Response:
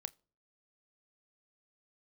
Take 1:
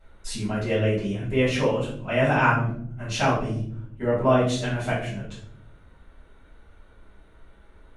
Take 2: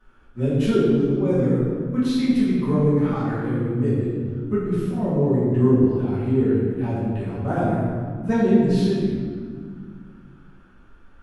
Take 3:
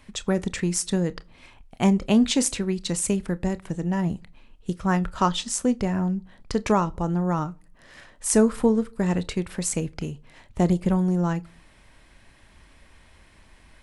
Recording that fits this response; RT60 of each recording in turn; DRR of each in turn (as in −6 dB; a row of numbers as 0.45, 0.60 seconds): 3; 0.65 s, 2.0 s, non-exponential decay; −10.0, −12.5, 15.0 decibels